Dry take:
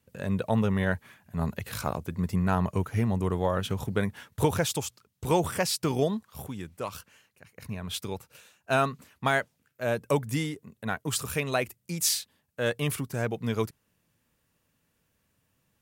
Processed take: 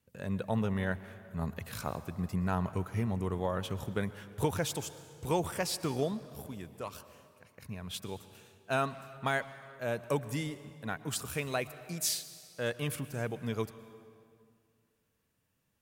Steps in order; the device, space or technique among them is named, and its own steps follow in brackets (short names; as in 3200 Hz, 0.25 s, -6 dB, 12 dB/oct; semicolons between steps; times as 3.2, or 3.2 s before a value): saturated reverb return (on a send at -12.5 dB: reverb RT60 2.1 s, pre-delay 0.108 s + soft clip -24 dBFS, distortion -15 dB); on the sum: gain -6 dB